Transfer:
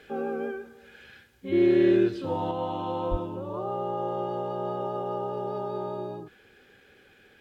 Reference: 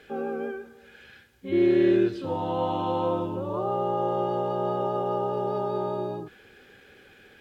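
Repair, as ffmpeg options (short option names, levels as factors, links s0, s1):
-filter_complex "[0:a]asplit=3[s0][s1][s2];[s0]afade=t=out:st=3.1:d=0.02[s3];[s1]highpass=f=140:w=0.5412,highpass=f=140:w=1.3066,afade=t=in:st=3.1:d=0.02,afade=t=out:st=3.22:d=0.02[s4];[s2]afade=t=in:st=3.22:d=0.02[s5];[s3][s4][s5]amix=inputs=3:normalize=0,asetnsamples=n=441:p=0,asendcmd='2.51 volume volume 4dB',volume=1"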